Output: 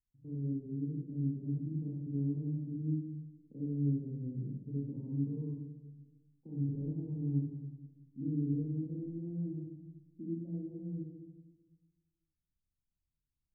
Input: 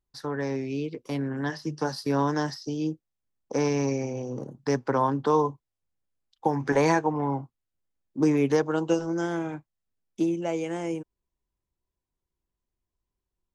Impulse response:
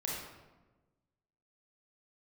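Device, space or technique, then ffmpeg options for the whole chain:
club heard from the street: -filter_complex "[0:a]alimiter=limit=-19.5dB:level=0:latency=1,lowpass=frequency=250:width=0.5412,lowpass=frequency=250:width=1.3066[link_01];[1:a]atrim=start_sample=2205[link_02];[link_01][link_02]afir=irnorm=-1:irlink=0,volume=-6.5dB"

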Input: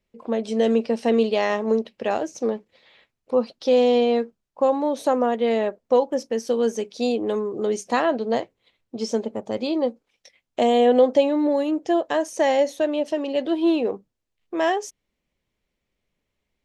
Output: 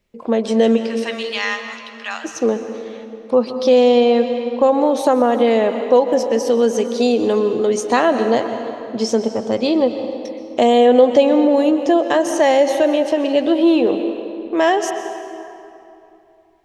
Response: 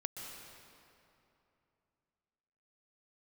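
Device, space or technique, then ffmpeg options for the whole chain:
ducked reverb: -filter_complex "[0:a]asplit=3[link_01][link_02][link_03];[link_01]afade=type=out:start_time=0.76:duration=0.02[link_04];[link_02]highpass=frequency=1200:width=0.5412,highpass=frequency=1200:width=1.3066,afade=type=in:start_time=0.76:duration=0.02,afade=type=out:start_time=2.24:duration=0.02[link_05];[link_03]afade=type=in:start_time=2.24:duration=0.02[link_06];[link_04][link_05][link_06]amix=inputs=3:normalize=0,asplit=3[link_07][link_08][link_09];[1:a]atrim=start_sample=2205[link_10];[link_08][link_10]afir=irnorm=-1:irlink=0[link_11];[link_09]apad=whole_len=734024[link_12];[link_11][link_12]sidechaincompress=threshold=-21dB:ratio=8:attack=8:release=109,volume=0.5dB[link_13];[link_07][link_13]amix=inputs=2:normalize=0,volume=3dB"

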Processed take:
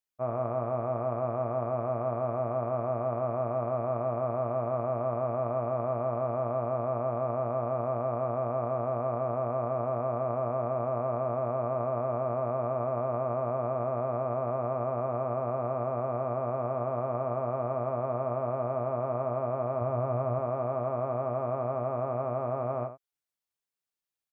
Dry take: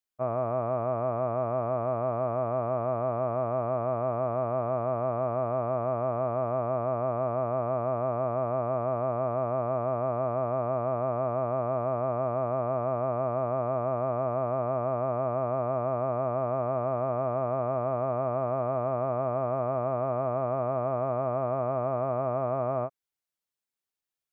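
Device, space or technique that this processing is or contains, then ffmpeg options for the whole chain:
slapback doubling: -filter_complex "[0:a]asettb=1/sr,asplit=3[link_01][link_02][link_03];[link_01]atrim=end=19.814[link_04];[link_02]atrim=start=19.81:end=20.39,asetpts=PTS-STARTPTS,afade=type=in:duration=0.004:curve=qsin,afade=type=out:start_time=0.576:duration=0.004:curve=qsin,equalizer=frequency=90:width=1.6:gain=12.5[link_05];[link_03]atrim=start=20.386[link_06];[link_04][link_05]acrossfade=duration=0.004:curve1=hsin:curve2=qsin[link_07];[link_07][link_06]acrossfade=duration=0.004:curve1=qsin:curve2=hsin,asplit=3[link_08][link_09][link_10];[link_09]adelay=17,volume=-9dB[link_11];[link_10]adelay=80,volume=-11dB[link_12];[link_08][link_11][link_12]amix=inputs=3:normalize=0,volume=-3dB"

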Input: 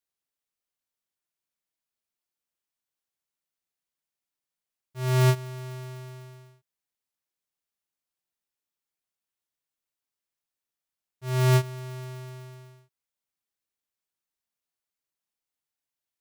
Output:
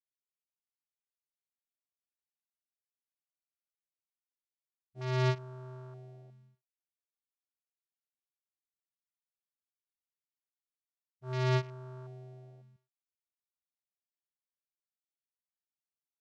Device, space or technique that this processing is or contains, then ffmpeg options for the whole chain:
over-cleaned archive recording: -af "highpass=130,lowpass=7100,afwtdn=0.00794,volume=-6dB"

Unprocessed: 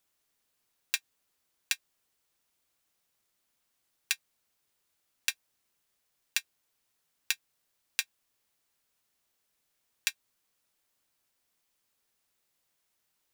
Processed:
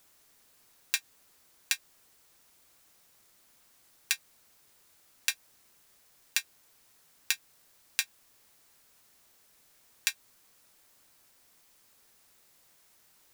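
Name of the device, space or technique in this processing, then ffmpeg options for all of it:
mastering chain: -af "equalizer=frequency=3000:width_type=o:width=0.77:gain=-2.5,acompressor=threshold=-30dB:ratio=2,alimiter=level_in=15.5dB:limit=-1dB:release=50:level=0:latency=1,volume=-1dB"

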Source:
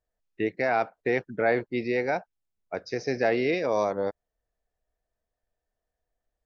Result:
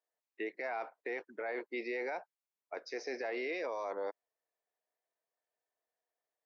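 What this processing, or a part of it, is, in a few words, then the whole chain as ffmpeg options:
laptop speaker: -af "highpass=frequency=320:width=0.5412,highpass=frequency=320:width=1.3066,equalizer=frequency=1000:width_type=o:width=0.55:gain=6,equalizer=frequency=2100:width_type=o:width=0.51:gain=4.5,alimiter=limit=-23.5dB:level=0:latency=1:release=21,volume=-6.5dB"

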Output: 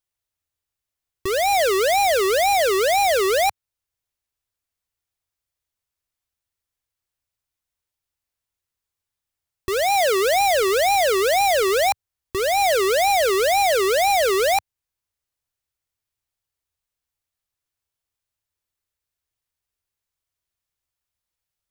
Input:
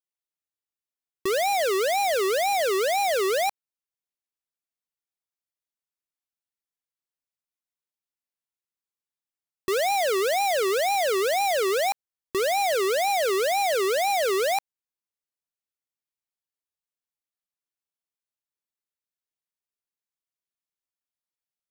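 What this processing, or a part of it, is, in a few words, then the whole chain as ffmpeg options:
car stereo with a boomy subwoofer: -filter_complex "[0:a]lowshelf=frequency=130:width_type=q:width=1.5:gain=11,alimiter=limit=-23.5dB:level=0:latency=1:release=456,asettb=1/sr,asplit=3[link_01][link_02][link_03];[link_01]atrim=end=9.854[link_04];[link_02]atrim=start=9.85:end=10.25,asetpts=PTS-STARTPTS,afade=type=in:duration=0.004:curve=qsin,afade=type=out:start_time=0.396:duration=0.004:curve=qsin,highpass=84[link_05];[link_03]atrim=start=10.246[link_06];[link_04][link_05]acrossfade=duration=0.004:curve1=hsin:curve2=qsin[link_07];[link_07][link_06]acrossfade=duration=0.004:curve1=qsin:curve2=hsin,volume=7.5dB"

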